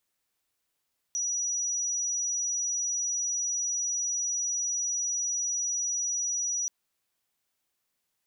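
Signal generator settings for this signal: tone sine 5840 Hz -27 dBFS 5.53 s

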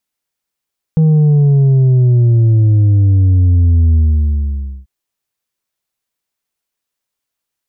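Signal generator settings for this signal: sub drop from 160 Hz, over 3.89 s, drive 4 dB, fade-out 0.91 s, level -7 dB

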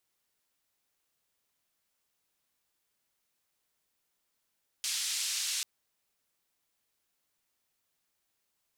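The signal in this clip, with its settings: noise band 3100–7300 Hz, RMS -33.5 dBFS 0.79 s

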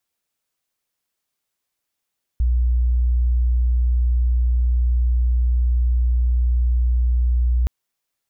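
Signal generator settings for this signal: tone sine 60.6 Hz -14.5 dBFS 5.27 s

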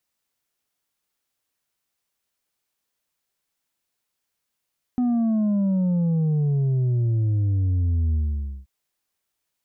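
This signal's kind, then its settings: sub drop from 250 Hz, over 3.68 s, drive 4 dB, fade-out 0.52 s, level -19 dB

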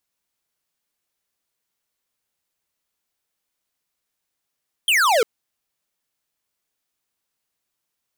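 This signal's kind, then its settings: laser zap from 3300 Hz, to 420 Hz, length 0.35 s square, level -16.5 dB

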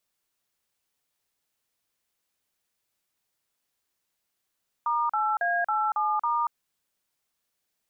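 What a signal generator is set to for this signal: DTMF "*8A87*", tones 0.235 s, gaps 40 ms, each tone -25.5 dBFS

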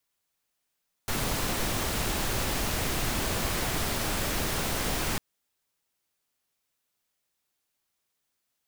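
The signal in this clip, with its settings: noise pink, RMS -29 dBFS 4.10 s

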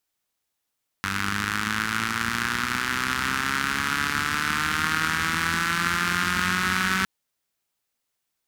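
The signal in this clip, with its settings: four-cylinder engine model, changing speed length 6.01 s, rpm 2900, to 5700, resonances 91/200/1400 Hz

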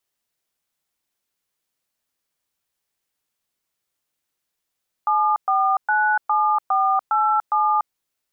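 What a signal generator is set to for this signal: DTMF "7497487", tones 0.291 s, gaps 0.117 s, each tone -18.5 dBFS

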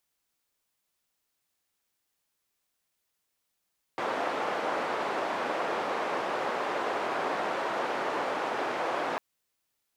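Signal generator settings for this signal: noise band 420–940 Hz, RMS -31 dBFS 5.20 s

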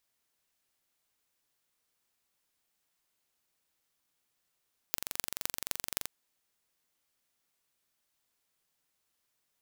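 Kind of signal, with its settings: pulse train 23.3/s, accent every 6, -2 dBFS 1.14 s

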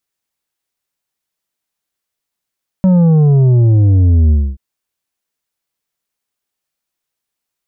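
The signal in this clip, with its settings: sub drop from 190 Hz, over 1.73 s, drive 7 dB, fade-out 0.26 s, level -7 dB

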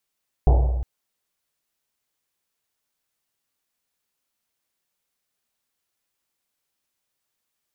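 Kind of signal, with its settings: Risset drum length 0.36 s, pitch 61 Hz, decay 1.82 s, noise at 570 Hz, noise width 520 Hz, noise 15%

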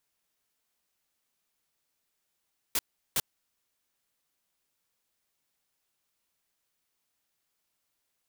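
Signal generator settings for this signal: noise bursts white, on 0.04 s, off 0.37 s, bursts 2, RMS -27 dBFS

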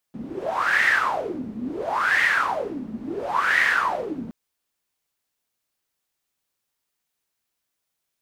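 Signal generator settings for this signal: wind-like swept noise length 4.17 s, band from 220 Hz, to 1900 Hz, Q 9.7, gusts 3, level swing 14 dB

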